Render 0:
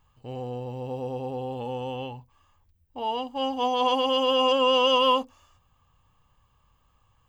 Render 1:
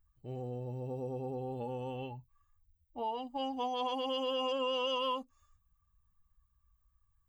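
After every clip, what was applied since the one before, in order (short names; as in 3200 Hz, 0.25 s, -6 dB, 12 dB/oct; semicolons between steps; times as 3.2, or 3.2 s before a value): per-bin expansion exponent 1.5; bell 92 Hz -4.5 dB 0.75 oct; compressor 3:1, threshold -35 dBFS, peak gain reduction 12 dB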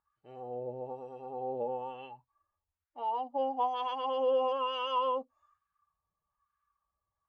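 wah 1.1 Hz 560–1500 Hz, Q 2.1; gain +9 dB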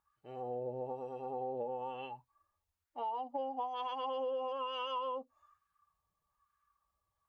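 compressor 6:1, threshold -38 dBFS, peak gain reduction 12 dB; gain +2.5 dB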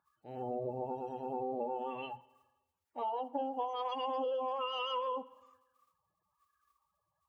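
bin magnitudes rounded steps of 30 dB; HPF 96 Hz; spring tank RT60 1.1 s, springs 50/57 ms, chirp 75 ms, DRR 18.5 dB; gain +2.5 dB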